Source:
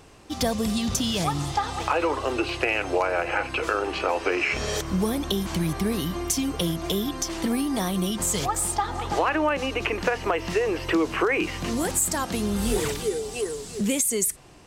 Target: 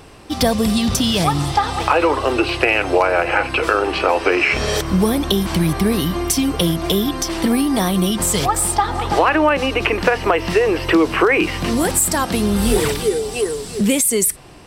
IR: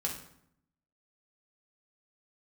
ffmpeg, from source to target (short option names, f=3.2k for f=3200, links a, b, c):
-af "equalizer=f=6.7k:t=o:w=0.23:g=-9,volume=8.5dB"